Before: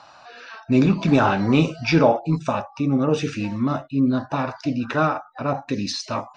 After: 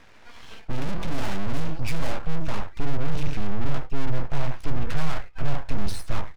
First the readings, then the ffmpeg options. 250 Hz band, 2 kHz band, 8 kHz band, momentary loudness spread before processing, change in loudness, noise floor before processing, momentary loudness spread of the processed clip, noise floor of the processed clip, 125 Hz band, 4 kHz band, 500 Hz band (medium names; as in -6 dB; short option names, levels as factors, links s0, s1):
-14.0 dB, -8.5 dB, no reading, 9 LU, -10.5 dB, -49 dBFS, 3 LU, -47 dBFS, -5.0 dB, -8.0 dB, -13.5 dB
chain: -filter_complex "[0:a]bass=f=250:g=12,treble=f=4000:g=-8,asplit=2[s0][s1];[s1]aecho=0:1:14|25|74:0.422|0.211|0.141[s2];[s0][s2]amix=inputs=2:normalize=0,aeval=exprs='(tanh(20*val(0)+0.7)-tanh(0.7))/20':c=same,aeval=exprs='abs(val(0))':c=same,asubboost=boost=6:cutoff=99"